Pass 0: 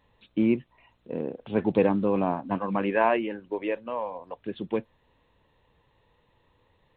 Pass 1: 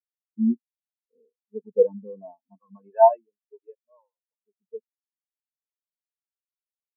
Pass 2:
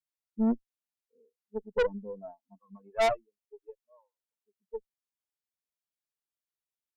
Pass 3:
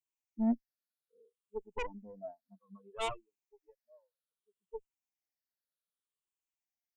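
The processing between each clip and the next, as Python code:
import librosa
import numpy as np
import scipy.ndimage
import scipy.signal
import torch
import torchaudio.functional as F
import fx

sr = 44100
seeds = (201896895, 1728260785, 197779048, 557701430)

y1 = fx.low_shelf(x, sr, hz=480.0, db=-9.5)
y1 = y1 + 0.39 * np.pad(y1, (int(4.6 * sr / 1000.0), 0))[:len(y1)]
y1 = fx.spectral_expand(y1, sr, expansion=4.0)
y1 = y1 * librosa.db_to_amplitude(8.0)
y2 = fx.tube_stage(y1, sr, drive_db=23.0, bias=0.6)
y2 = y2 * librosa.db_to_amplitude(1.5)
y3 = fx.spec_ripple(y2, sr, per_octave=0.68, drift_hz=-0.63, depth_db=17)
y3 = y3 * librosa.db_to_amplitude(-8.0)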